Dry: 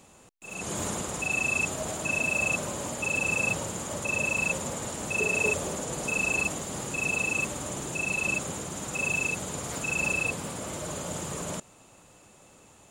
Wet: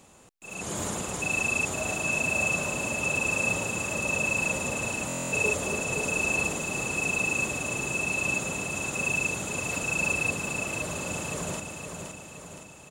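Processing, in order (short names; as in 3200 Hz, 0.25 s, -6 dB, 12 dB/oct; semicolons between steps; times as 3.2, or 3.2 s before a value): feedback echo 0.517 s, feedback 53%, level -6 dB; stuck buffer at 5.07, samples 1024, times 10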